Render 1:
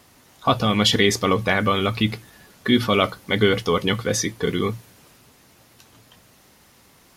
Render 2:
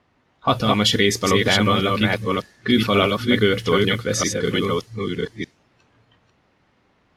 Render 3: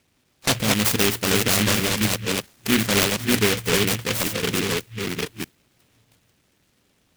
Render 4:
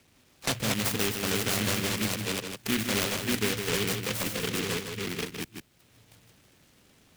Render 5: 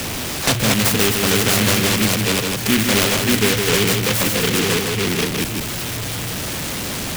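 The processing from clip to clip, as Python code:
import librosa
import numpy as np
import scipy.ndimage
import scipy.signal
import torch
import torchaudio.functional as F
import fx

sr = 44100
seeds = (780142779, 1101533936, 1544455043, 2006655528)

y1 = fx.reverse_delay(x, sr, ms=605, wet_db=-2.5)
y1 = fx.env_lowpass(y1, sr, base_hz=2500.0, full_db=-16.0)
y1 = fx.noise_reduce_blind(y1, sr, reduce_db=8)
y2 = fx.noise_mod_delay(y1, sr, seeds[0], noise_hz=2300.0, depth_ms=0.29)
y2 = F.gain(torch.from_numpy(y2), -2.5).numpy()
y3 = y2 + 10.0 ** (-7.5 / 20.0) * np.pad(y2, (int(157 * sr / 1000.0), 0))[:len(y2)]
y3 = fx.band_squash(y3, sr, depth_pct=40)
y3 = F.gain(torch.from_numpy(y3), -8.5).numpy()
y4 = y3 + 0.5 * 10.0 ** (-28.5 / 20.0) * np.sign(y3)
y4 = F.gain(torch.from_numpy(y4), 9.0).numpy()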